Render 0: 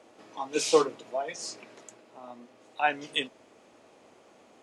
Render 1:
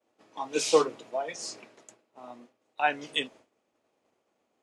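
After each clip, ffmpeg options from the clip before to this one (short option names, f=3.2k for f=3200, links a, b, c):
-af "agate=range=-33dB:threshold=-45dB:ratio=3:detection=peak"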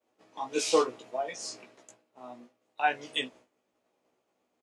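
-filter_complex "[0:a]asplit=2[a][b];[b]adelay=16,volume=-3.5dB[c];[a][c]amix=inputs=2:normalize=0,volume=-3dB"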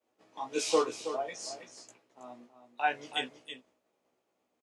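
-af "aecho=1:1:323:0.299,volume=-2.5dB"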